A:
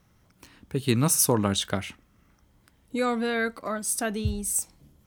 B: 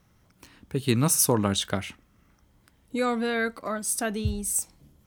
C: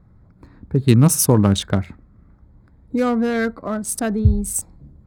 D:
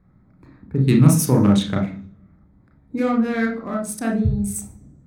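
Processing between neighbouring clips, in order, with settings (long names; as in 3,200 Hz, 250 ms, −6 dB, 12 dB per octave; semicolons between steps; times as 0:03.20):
no processing that can be heard
adaptive Wiener filter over 15 samples; low-shelf EQ 250 Hz +11 dB; level +4 dB
convolution reverb RT60 0.45 s, pre-delay 30 ms, DRR 0.5 dB; level −6 dB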